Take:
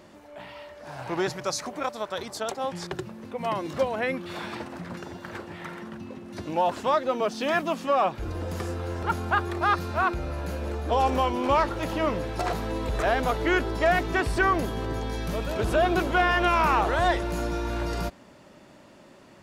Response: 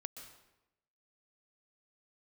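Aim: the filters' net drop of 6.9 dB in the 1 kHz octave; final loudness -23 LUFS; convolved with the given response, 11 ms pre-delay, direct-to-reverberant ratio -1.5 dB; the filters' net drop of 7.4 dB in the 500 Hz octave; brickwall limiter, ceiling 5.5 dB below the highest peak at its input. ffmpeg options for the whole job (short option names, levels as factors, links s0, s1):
-filter_complex "[0:a]equalizer=f=500:t=o:g=-8,equalizer=f=1000:t=o:g=-6.5,alimiter=limit=0.112:level=0:latency=1,asplit=2[s0][s1];[1:a]atrim=start_sample=2205,adelay=11[s2];[s1][s2]afir=irnorm=-1:irlink=0,volume=1.78[s3];[s0][s3]amix=inputs=2:normalize=0,volume=1.78"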